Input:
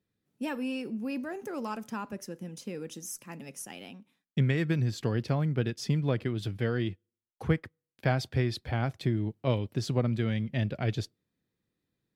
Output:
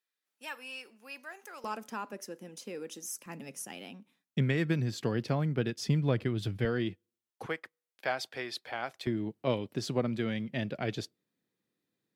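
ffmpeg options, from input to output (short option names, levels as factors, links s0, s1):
-af "asetnsamples=n=441:p=0,asendcmd='1.64 highpass f 310;3.26 highpass f 140;5.88 highpass f 57;6.65 highpass f 150;7.46 highpass f 590;9.07 highpass f 190',highpass=1100"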